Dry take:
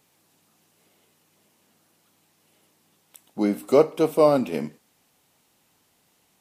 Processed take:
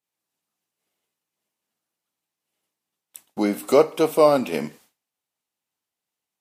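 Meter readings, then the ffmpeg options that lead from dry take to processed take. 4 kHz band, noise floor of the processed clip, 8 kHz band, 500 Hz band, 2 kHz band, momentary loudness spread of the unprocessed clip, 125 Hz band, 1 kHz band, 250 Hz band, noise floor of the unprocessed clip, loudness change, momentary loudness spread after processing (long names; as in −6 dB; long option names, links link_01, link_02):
+5.0 dB, below −85 dBFS, +6.0 dB, +1.5 dB, +5.0 dB, 15 LU, −1.5 dB, +3.0 dB, 0.0 dB, −66 dBFS, +1.5 dB, 15 LU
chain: -filter_complex "[0:a]agate=range=-33dB:threshold=-48dB:ratio=3:detection=peak,lowshelf=frequency=450:gain=-8,asplit=2[link_01][link_02];[link_02]acompressor=threshold=-32dB:ratio=6,volume=-2dB[link_03];[link_01][link_03]amix=inputs=2:normalize=0,volume=3.5dB"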